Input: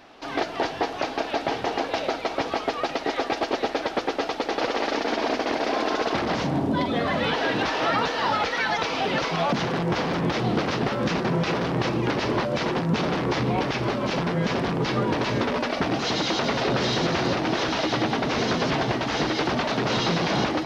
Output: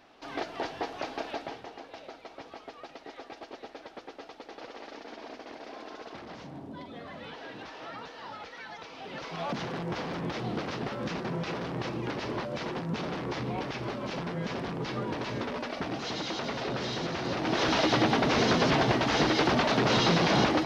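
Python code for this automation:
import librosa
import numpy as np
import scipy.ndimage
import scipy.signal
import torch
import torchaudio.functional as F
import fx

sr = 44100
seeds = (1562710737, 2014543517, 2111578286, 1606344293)

y = fx.gain(x, sr, db=fx.line((1.3, -8.5), (1.72, -19.0), (8.96, -19.0), (9.5, -9.5), (17.22, -9.5), (17.7, -0.5)))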